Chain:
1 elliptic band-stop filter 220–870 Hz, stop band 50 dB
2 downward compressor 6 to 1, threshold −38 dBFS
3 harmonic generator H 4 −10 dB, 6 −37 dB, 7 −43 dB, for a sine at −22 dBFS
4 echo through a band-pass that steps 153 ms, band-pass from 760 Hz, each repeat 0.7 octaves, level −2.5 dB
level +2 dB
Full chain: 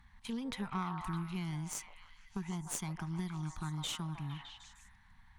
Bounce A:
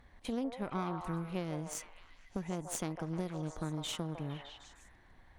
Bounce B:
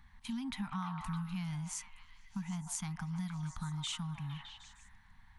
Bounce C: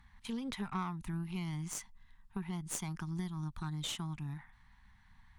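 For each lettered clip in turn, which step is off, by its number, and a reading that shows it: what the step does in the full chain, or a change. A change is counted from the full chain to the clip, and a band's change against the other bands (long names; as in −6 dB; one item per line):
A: 1, 500 Hz band +11.5 dB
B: 3, change in crest factor −3.0 dB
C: 4, echo-to-direct ratio −5.0 dB to none audible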